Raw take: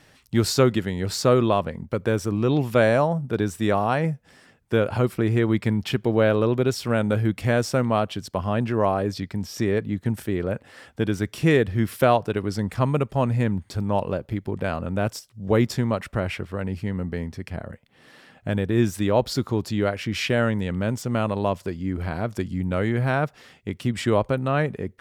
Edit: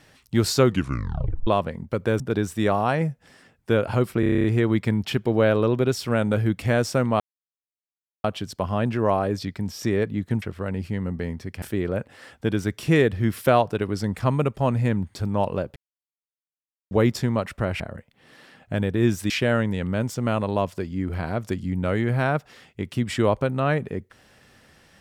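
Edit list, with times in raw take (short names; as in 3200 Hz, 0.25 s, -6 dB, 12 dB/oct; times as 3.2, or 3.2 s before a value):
0.66 tape stop 0.81 s
2.2–3.23 cut
5.23 stutter 0.03 s, 9 plays
7.99 insert silence 1.04 s
14.31–15.46 mute
16.35–17.55 move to 10.17
19.05–20.18 cut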